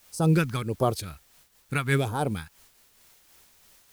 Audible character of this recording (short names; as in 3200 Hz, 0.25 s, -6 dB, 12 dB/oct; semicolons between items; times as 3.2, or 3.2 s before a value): phasing stages 2, 1.5 Hz, lowest notch 460–2200 Hz; a quantiser's noise floor 10-bit, dither triangular; noise-modulated level